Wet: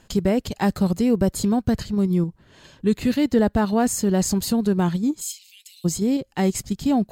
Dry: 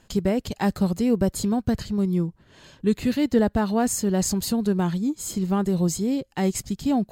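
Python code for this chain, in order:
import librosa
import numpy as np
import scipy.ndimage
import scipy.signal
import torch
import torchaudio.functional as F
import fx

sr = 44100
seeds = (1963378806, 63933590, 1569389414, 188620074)

p1 = fx.steep_highpass(x, sr, hz=2300.0, slope=72, at=(5.2, 5.84), fade=0.02)
p2 = fx.level_steps(p1, sr, step_db=12)
p3 = p1 + F.gain(torch.from_numpy(p2), 0.0).numpy()
y = F.gain(torch.from_numpy(p3), -2.0).numpy()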